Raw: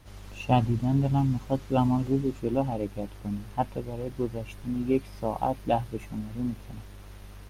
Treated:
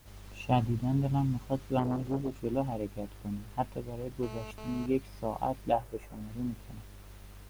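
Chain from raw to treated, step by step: 4.23–4.86 s: mobile phone buzz -41 dBFS; 5.72–6.21 s: graphic EQ 125/250/500/4000 Hz -7/-7/+7/-9 dB; added noise white -60 dBFS; 1.79–2.45 s: transformer saturation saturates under 460 Hz; trim -4.5 dB

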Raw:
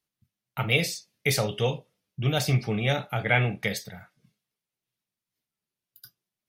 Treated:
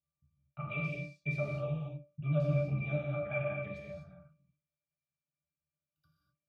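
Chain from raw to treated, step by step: peaking EQ 330 Hz -12.5 dB 0.44 oct; in parallel at -3 dB: compression, threshold -37 dBFS, peak gain reduction 18.5 dB; on the sum: vibrato 13 Hz 86 cents; pitch-class resonator D, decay 0.21 s; gated-style reverb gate 270 ms flat, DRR -2 dB

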